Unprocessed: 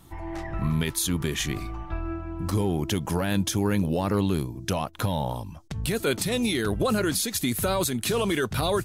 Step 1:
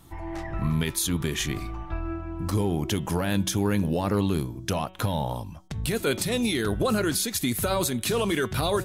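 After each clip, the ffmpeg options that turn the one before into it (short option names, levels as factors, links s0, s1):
-af "bandreject=f=186.4:t=h:w=4,bandreject=f=372.8:t=h:w=4,bandreject=f=559.2:t=h:w=4,bandreject=f=745.6:t=h:w=4,bandreject=f=932:t=h:w=4,bandreject=f=1118.4:t=h:w=4,bandreject=f=1304.8:t=h:w=4,bandreject=f=1491.2:t=h:w=4,bandreject=f=1677.6:t=h:w=4,bandreject=f=1864:t=h:w=4,bandreject=f=2050.4:t=h:w=4,bandreject=f=2236.8:t=h:w=4,bandreject=f=2423.2:t=h:w=4,bandreject=f=2609.6:t=h:w=4,bandreject=f=2796:t=h:w=4,bandreject=f=2982.4:t=h:w=4,bandreject=f=3168.8:t=h:w=4,bandreject=f=3355.2:t=h:w=4,bandreject=f=3541.6:t=h:w=4,bandreject=f=3728:t=h:w=4,bandreject=f=3914.4:t=h:w=4"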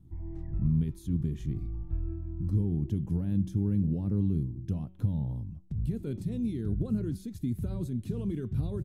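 -af "firequalizer=gain_entry='entry(150,0);entry(590,-23);entry(1200,-29)':delay=0.05:min_phase=1"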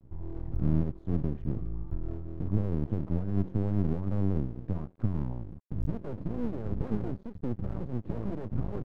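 -af "lowpass=f=1100:t=q:w=1.8,aeval=exprs='max(val(0),0)':c=same,volume=1.41"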